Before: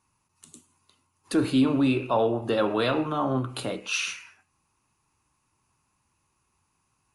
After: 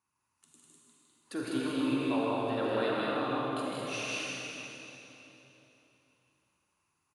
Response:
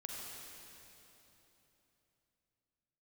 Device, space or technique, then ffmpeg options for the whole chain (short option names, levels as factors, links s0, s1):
stadium PA: -filter_complex "[0:a]highpass=f=150:p=1,equalizer=f=1600:t=o:w=1.1:g=3.5,aecho=1:1:157.4|201.2:0.708|0.708[s0];[1:a]atrim=start_sample=2205[s1];[s0][s1]afir=irnorm=-1:irlink=0,volume=0.398"